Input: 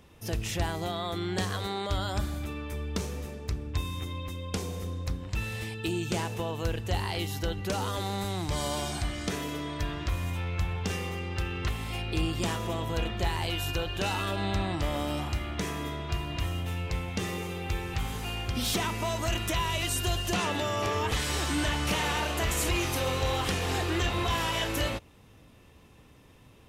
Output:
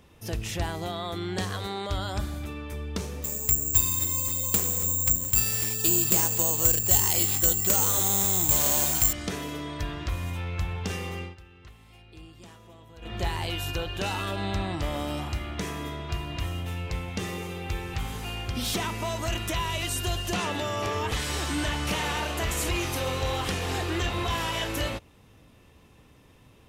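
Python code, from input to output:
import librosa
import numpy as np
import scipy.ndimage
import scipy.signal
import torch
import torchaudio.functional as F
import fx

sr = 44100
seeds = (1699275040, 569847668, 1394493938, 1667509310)

y = fx.resample_bad(x, sr, factor=6, down='none', up='zero_stuff', at=(3.24, 9.13))
y = fx.edit(y, sr, fx.fade_down_up(start_s=11.22, length_s=1.93, db=-18.5, fade_s=0.14), tone=tone)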